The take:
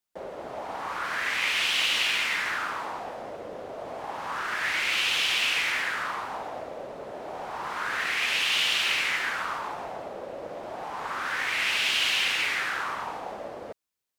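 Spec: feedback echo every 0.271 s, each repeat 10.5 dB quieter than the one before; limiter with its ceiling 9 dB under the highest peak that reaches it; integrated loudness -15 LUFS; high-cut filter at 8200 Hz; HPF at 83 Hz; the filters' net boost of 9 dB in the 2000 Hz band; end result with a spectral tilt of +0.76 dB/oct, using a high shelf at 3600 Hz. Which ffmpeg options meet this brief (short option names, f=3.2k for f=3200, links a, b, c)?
-af "highpass=83,lowpass=8.2k,equalizer=f=2k:t=o:g=8.5,highshelf=f=3.6k:g=8.5,alimiter=limit=-13.5dB:level=0:latency=1,aecho=1:1:271|542|813:0.299|0.0896|0.0269,volume=6.5dB"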